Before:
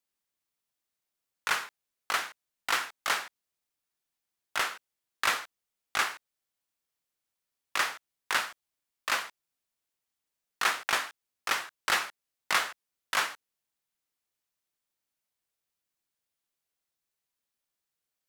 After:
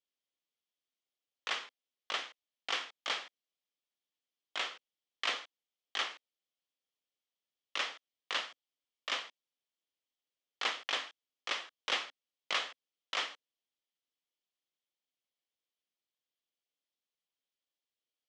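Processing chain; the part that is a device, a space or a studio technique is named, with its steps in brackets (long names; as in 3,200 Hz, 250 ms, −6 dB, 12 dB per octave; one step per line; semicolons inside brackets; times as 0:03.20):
full-range speaker at full volume (highs frequency-modulated by the lows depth 0.47 ms; loudspeaker in its box 240–6,300 Hz, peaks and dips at 270 Hz +4 dB, 510 Hz +4 dB, 930 Hz −4 dB, 1,500 Hz −7 dB, 3,200 Hz +8 dB)
level −6.5 dB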